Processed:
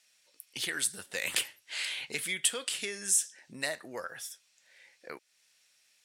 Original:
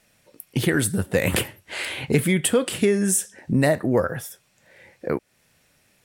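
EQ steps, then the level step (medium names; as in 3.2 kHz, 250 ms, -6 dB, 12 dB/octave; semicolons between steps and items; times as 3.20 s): band-pass filter 5.2 kHz, Q 0.93; 0.0 dB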